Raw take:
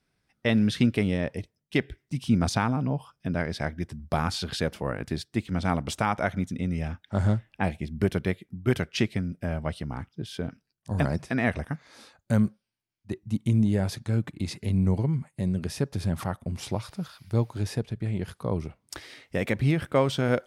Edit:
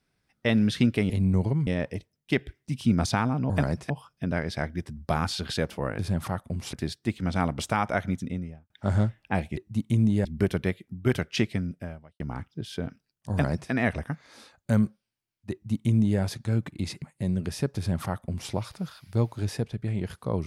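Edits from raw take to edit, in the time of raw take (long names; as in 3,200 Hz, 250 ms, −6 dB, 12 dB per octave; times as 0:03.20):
0:06.45–0:06.99: fade out and dull
0:09.32–0:09.81: fade out quadratic
0:10.92–0:11.32: duplicate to 0:02.93
0:13.13–0:13.81: duplicate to 0:07.86
0:14.63–0:15.20: move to 0:01.10
0:15.95–0:16.69: duplicate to 0:05.02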